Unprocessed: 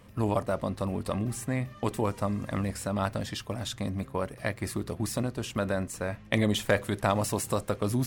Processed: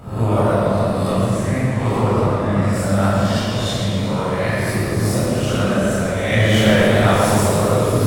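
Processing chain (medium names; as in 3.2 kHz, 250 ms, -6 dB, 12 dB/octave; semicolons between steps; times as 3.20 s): reverse spectral sustain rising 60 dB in 0.70 s; 1.26–2.73 s: treble shelf 8.9 kHz -11.5 dB; thinning echo 117 ms, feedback 77%, level -11 dB; reverberation RT60 1.8 s, pre-delay 17 ms, DRR -6.5 dB; modulated delay 132 ms, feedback 60%, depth 214 cents, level -10 dB; trim -2 dB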